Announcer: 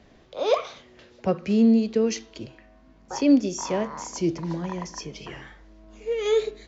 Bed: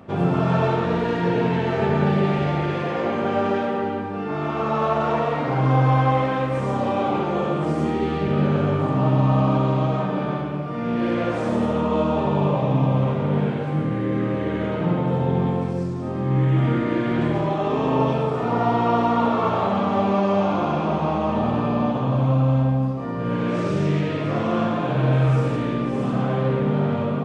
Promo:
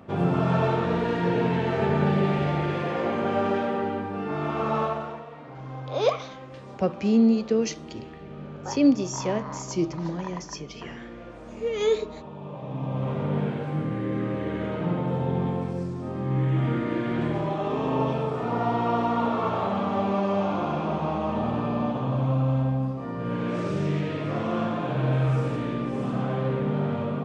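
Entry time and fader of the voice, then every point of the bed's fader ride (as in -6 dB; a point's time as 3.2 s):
5.55 s, -1.0 dB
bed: 4.8 s -3 dB
5.25 s -19.5 dB
12.39 s -19.5 dB
13.18 s -5 dB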